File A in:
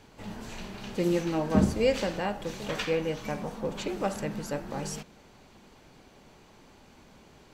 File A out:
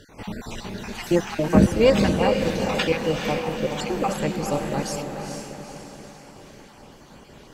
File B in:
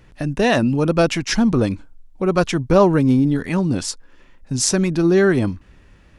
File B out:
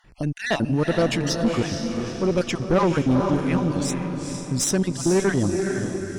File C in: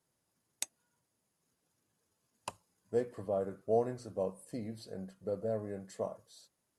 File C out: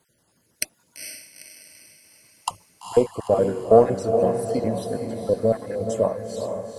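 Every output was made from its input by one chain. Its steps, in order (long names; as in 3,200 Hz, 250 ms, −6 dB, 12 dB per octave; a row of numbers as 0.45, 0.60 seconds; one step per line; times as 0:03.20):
time-frequency cells dropped at random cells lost 35%
feedback delay with all-pass diffusion 455 ms, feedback 49%, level −5.5 dB
tube saturation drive 12 dB, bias 0.4
loudness normalisation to −23 LKFS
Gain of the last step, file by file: +9.5, −1.0, +17.0 decibels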